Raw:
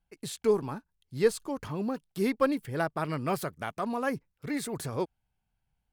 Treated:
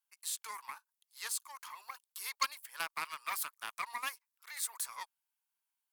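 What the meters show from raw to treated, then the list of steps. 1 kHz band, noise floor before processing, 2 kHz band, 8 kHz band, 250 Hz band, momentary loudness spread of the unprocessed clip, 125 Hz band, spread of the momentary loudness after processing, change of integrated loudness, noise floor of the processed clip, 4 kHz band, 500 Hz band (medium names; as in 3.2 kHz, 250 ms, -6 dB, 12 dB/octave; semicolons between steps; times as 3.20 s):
-6.0 dB, -81 dBFS, -3.5 dB, +4.0 dB, -37.0 dB, 10 LU, under -35 dB, 12 LU, -8.5 dB, under -85 dBFS, +1.5 dB, -31.5 dB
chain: ladder high-pass 920 Hz, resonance 65%; Chebyshev shaper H 6 -15 dB, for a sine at -19.5 dBFS; differentiator; trim +13.5 dB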